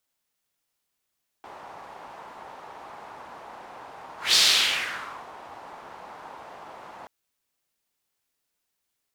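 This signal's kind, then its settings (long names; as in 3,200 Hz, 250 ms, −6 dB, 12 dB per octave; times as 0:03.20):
pass-by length 5.63 s, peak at 0:02.91, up 0.18 s, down 1.01 s, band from 880 Hz, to 4,300 Hz, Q 2.4, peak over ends 25.5 dB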